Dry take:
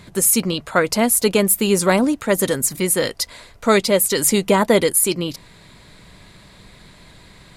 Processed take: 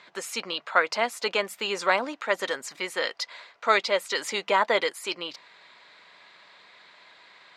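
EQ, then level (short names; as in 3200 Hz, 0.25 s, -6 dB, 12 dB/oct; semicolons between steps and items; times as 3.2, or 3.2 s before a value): HPF 840 Hz 12 dB/oct; air absorption 180 m; 0.0 dB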